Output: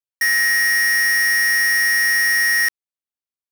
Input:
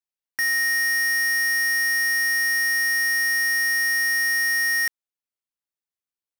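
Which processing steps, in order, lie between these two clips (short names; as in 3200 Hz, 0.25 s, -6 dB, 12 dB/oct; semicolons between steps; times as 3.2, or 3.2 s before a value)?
granular stretch 0.55×, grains 20 ms; sample leveller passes 5; gain +5.5 dB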